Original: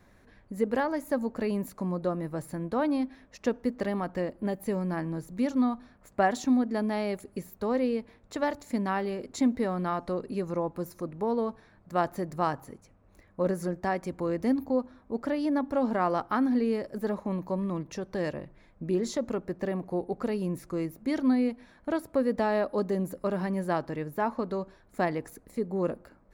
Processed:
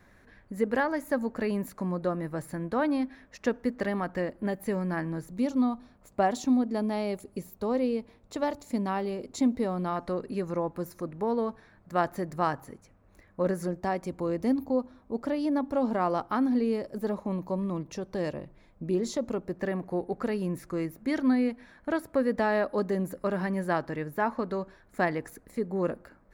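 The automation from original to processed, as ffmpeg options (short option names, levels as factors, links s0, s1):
-af "asetnsamples=n=441:p=0,asendcmd='5.31 equalizer g -5.5;9.96 equalizer g 3;13.66 equalizer g -3.5;19.57 equalizer g 5',equalizer=f=1700:t=o:w=0.76:g=5"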